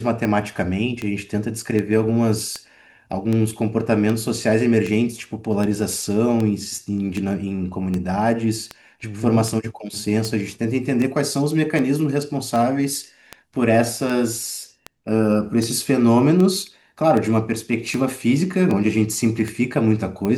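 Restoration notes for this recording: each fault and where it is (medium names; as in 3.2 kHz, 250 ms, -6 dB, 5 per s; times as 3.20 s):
tick 78 rpm -12 dBFS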